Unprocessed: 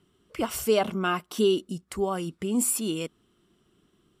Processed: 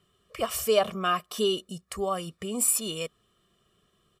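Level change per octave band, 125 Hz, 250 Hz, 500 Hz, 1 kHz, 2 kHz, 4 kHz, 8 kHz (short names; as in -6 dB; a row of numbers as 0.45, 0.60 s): -4.5, -7.0, -1.5, +1.0, -1.5, +3.0, +2.5 dB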